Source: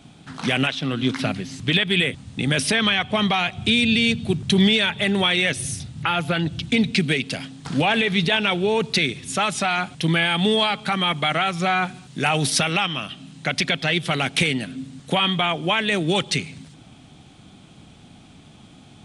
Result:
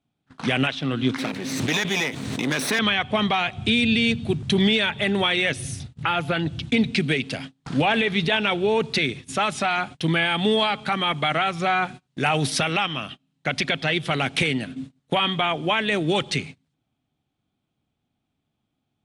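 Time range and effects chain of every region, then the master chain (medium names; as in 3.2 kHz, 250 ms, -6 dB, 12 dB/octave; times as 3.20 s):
1.18–2.79 s: comb filter that takes the minimum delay 0.5 ms + high-pass 240 Hz + swell ahead of each attack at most 28 dB/s
whole clip: peaking EQ 180 Hz -6 dB 0.23 oct; gate -34 dBFS, range -29 dB; treble shelf 4.2 kHz -7.5 dB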